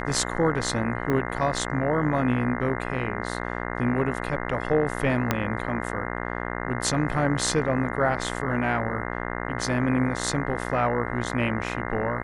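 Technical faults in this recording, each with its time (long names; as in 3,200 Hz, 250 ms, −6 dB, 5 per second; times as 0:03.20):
mains buzz 60 Hz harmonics 35 −31 dBFS
0:01.10: click −15 dBFS
0:05.31: click −7 dBFS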